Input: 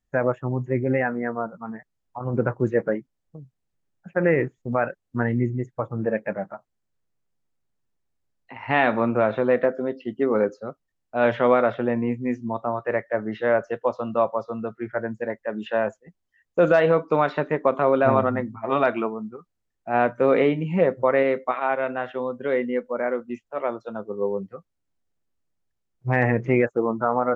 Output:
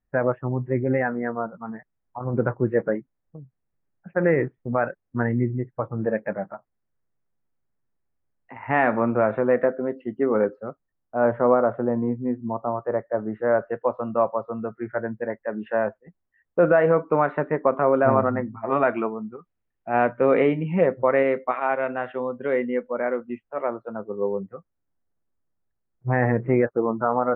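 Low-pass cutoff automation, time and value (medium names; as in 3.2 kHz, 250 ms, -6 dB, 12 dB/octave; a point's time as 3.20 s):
low-pass 24 dB/octave
10.64 s 2.1 kHz
11.34 s 1.3 kHz
13.28 s 1.3 kHz
13.79 s 2 kHz
18.67 s 2 kHz
19.18 s 2.8 kHz
23.24 s 2.8 kHz
23.90 s 1.8 kHz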